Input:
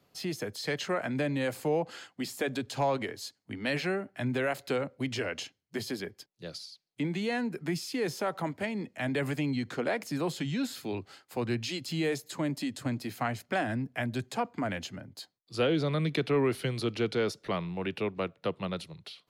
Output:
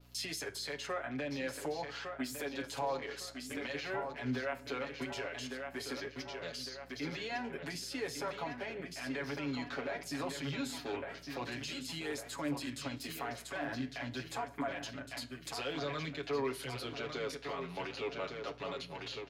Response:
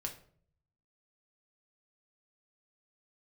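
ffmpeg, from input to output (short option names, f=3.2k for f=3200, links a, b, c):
-filter_complex "[0:a]highpass=f=970:p=1,acompressor=threshold=-39dB:ratio=4,highshelf=f=7.4k:g=9.5,aecho=1:1:1155|2310|3465|4620|5775|6930:0.398|0.203|0.104|0.0528|0.0269|0.0137,acompressor=mode=upward:threshold=-44dB:ratio=2.5,afwtdn=0.00251,alimiter=level_in=10dB:limit=-24dB:level=0:latency=1:release=21,volume=-10dB,aecho=1:1:7.2:0.92,aeval=exprs='val(0)+0.000794*(sin(2*PI*60*n/s)+sin(2*PI*2*60*n/s)/2+sin(2*PI*3*60*n/s)/3+sin(2*PI*4*60*n/s)/4+sin(2*PI*5*60*n/s)/5)':c=same,flanger=delay=6.7:depth=7.6:regen=79:speed=0.48:shape=triangular,asplit=2[a][b];[1:a]atrim=start_sample=2205,asetrate=27342,aresample=44100,lowpass=8k[c];[b][c]afir=irnorm=-1:irlink=0,volume=-12dB[d];[a][d]amix=inputs=2:normalize=0,adynamicequalizer=threshold=0.00141:dfrequency=1600:dqfactor=0.7:tfrequency=1600:tqfactor=0.7:attack=5:release=100:ratio=0.375:range=3:mode=cutabove:tftype=highshelf,volume=6dB"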